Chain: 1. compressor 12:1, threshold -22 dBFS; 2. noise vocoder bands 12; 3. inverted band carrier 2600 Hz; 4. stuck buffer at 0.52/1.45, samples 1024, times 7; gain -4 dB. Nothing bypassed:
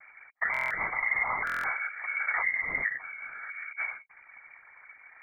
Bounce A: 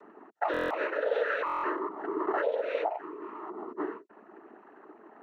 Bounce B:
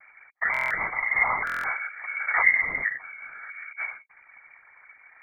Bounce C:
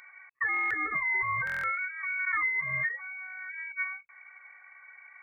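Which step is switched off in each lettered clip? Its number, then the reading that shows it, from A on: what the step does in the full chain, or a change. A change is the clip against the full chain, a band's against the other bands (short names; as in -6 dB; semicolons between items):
3, 2 kHz band -26.0 dB; 1, mean gain reduction 2.0 dB; 2, crest factor change -4.5 dB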